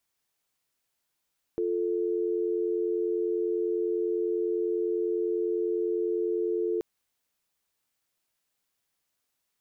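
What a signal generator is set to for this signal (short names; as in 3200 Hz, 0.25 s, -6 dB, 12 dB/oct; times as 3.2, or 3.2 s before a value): call progress tone dial tone, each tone -28 dBFS 5.23 s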